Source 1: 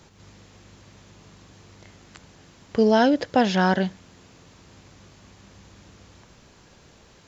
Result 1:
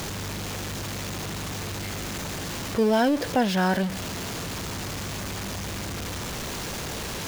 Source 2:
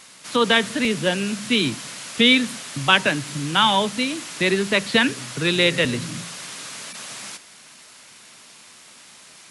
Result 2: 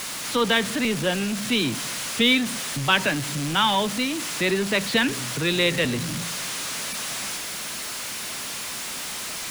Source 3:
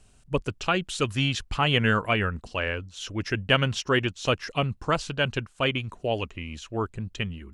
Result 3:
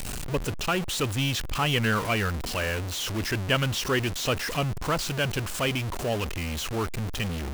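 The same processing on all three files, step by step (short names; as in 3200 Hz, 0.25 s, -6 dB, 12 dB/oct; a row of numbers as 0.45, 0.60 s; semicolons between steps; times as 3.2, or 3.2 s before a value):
zero-crossing step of -22 dBFS; gain -5 dB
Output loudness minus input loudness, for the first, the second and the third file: -7.5, -4.0, -0.5 LU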